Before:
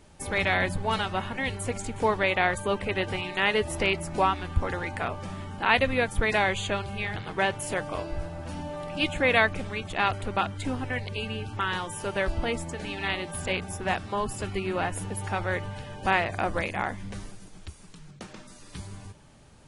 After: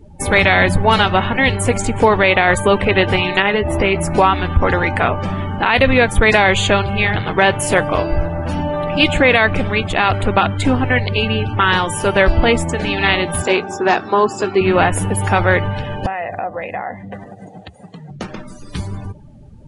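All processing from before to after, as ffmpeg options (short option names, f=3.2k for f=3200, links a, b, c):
-filter_complex "[0:a]asettb=1/sr,asplit=3[a][b][c];[a]atrim=end=3.424[d];[b]atrim=start=3.42:end=3.96,asetpts=PTS-STARTPTS,afade=t=in:d=0.004:c=qsin,afade=t=out:st=0.536:d=0.004:c=qsin,highshelf=f=3.9k:g=-12,acompressor=threshold=-27dB:ratio=4:attack=3.2:release=140:knee=1:detection=peak,asplit=2[e][f];[f]adelay=15,volume=-9dB[g];[e][g]amix=inputs=2:normalize=0,atrim=end_sample=23814[h];[c]atrim=start=3.956[i];[d][h]acrossfade=d=0.004:c1=hsin:c2=qsin[j];[j][i]acrossfade=d=0.004:c1=qsin:c2=hsin,asettb=1/sr,asplit=3[k][l][m];[k]atrim=end=13.424[n];[l]atrim=start=13.42:end=14.61,asetpts=PTS-STARTPTS,afade=t=in:d=0.004:c=qsin,afade=t=out:st=1.186:d=0.004:c=qsin,volume=19dB,asoftclip=hard,volume=-19dB,highpass=270,equalizer=f=380:t=q:w=4:g=5,equalizer=f=560:t=q:w=4:g=-4,equalizer=f=2.1k:t=q:w=4:g=-6,equalizer=f=3.1k:t=q:w=4:g=-6,lowpass=f=7.1k:w=0.5412,lowpass=f=7.1k:w=1.3066,asplit=2[o][p];[p]adelay=19,volume=-12.5dB[q];[o][q]amix=inputs=2:normalize=0,atrim=end_sample=52479[r];[m]atrim=start=14.606[s];[n][r]acrossfade=d=0.004:c1=hsin:c2=qsin[t];[t][s]acrossfade=d=0.004:c1=qsin:c2=hsin,asettb=1/sr,asplit=3[u][v][w];[u]atrim=end=16.064[x];[v]atrim=start=16.06:end=18.11,asetpts=PTS-STARTPTS,afade=t=in:d=0.004:c=qsin,afade=t=out:st=2.046:d=0.004:c=qsin,bandreject=f=2.2k:w=8.5,acompressor=threshold=-40dB:ratio=12:attack=3.2:release=140:knee=1:detection=peak,highpass=120,equalizer=f=350:t=q:w=4:g=-3,equalizer=f=510:t=q:w=4:g=7,equalizer=f=730:t=q:w=4:g=10,equalizer=f=2k:t=q:w=4:g=7,equalizer=f=5.3k:t=q:w=4:g=-6,lowpass=f=9.8k:w=0.5412,lowpass=f=9.8k:w=1.3066[y];[w]atrim=start=18.106[z];[x][y]acrossfade=d=0.004:c1=hsin:c2=qsin[aa];[aa][z]acrossfade=d=0.004:c1=qsin:c2=hsin,afftdn=nr=22:nf=-50,highshelf=f=9.7k:g=-4.5,alimiter=level_in=16.5dB:limit=-1dB:release=50:level=0:latency=1,volume=-1dB"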